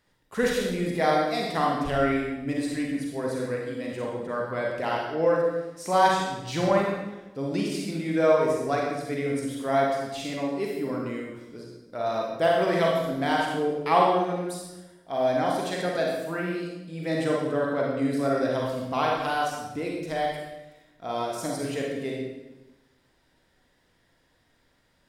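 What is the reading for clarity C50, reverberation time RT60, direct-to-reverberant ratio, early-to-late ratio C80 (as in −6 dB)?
0.5 dB, 1.0 s, −2.5 dB, 3.5 dB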